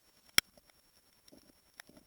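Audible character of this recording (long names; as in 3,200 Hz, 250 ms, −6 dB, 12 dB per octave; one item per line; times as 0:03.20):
a buzz of ramps at a fixed pitch in blocks of 8 samples
tremolo saw up 10 Hz, depth 85%
a quantiser's noise floor 12 bits, dither triangular
Opus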